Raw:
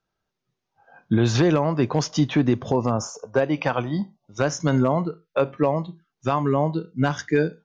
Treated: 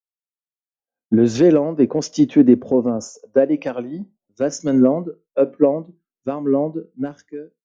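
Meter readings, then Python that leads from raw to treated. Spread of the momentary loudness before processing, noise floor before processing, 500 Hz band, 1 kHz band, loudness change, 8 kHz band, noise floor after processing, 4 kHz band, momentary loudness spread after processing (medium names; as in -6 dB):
8 LU, -82 dBFS, +5.0 dB, -6.5 dB, +5.0 dB, no reading, under -85 dBFS, -4.5 dB, 15 LU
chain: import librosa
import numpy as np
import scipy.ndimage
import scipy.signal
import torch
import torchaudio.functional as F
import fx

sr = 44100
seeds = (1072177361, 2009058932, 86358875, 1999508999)

y = fx.fade_out_tail(x, sr, length_s=0.91)
y = fx.graphic_eq_10(y, sr, hz=(125, 250, 500, 1000, 4000), db=(-8, 11, 9, -7, -8))
y = fx.band_widen(y, sr, depth_pct=100)
y = y * 10.0 ** (-3.5 / 20.0)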